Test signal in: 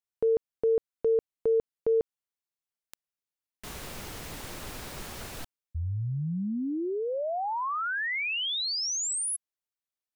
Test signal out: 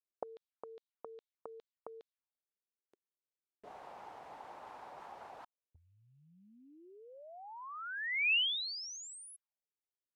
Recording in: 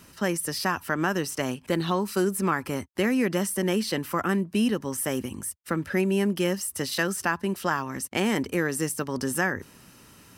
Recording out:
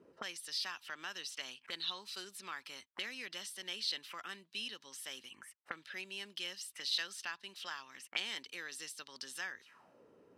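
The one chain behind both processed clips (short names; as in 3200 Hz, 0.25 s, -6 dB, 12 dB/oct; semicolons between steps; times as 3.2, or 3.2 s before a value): auto-wah 380–3800 Hz, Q 3.7, up, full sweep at -27 dBFS; gain +2 dB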